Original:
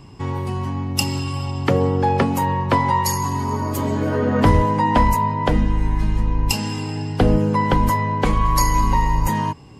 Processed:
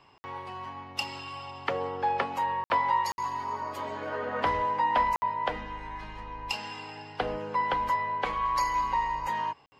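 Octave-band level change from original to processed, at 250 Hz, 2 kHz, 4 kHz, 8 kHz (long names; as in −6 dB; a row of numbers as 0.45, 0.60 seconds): −22.5, −6.0, −9.0, −19.0 decibels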